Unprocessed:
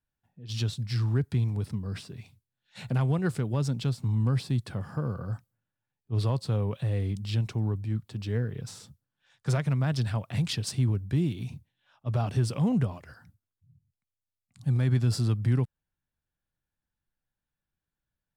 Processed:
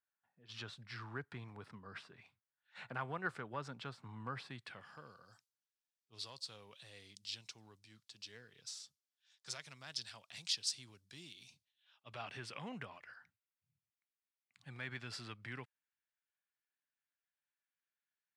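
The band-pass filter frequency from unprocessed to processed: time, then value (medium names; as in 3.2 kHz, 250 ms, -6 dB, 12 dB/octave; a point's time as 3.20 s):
band-pass filter, Q 1.5
4.39 s 1.4 kHz
5.27 s 5.2 kHz
11.51 s 5.2 kHz
12.36 s 2.1 kHz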